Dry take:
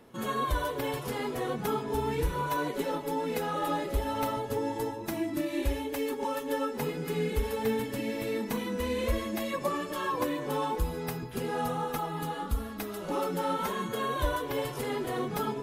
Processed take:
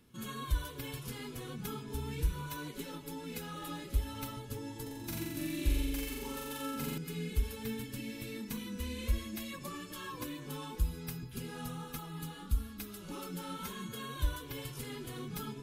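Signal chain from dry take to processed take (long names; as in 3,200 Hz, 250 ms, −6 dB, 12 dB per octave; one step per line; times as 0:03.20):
guitar amp tone stack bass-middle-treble 6-0-2
notch filter 1,900 Hz, Q 9.4
0:04.82–0:06.98: flutter between parallel walls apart 7.5 metres, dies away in 1.4 s
level +11.5 dB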